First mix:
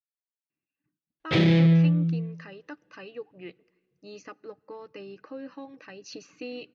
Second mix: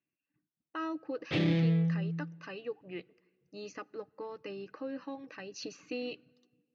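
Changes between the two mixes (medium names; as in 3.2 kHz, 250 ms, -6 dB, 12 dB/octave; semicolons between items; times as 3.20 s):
speech: entry -0.50 s; background -9.0 dB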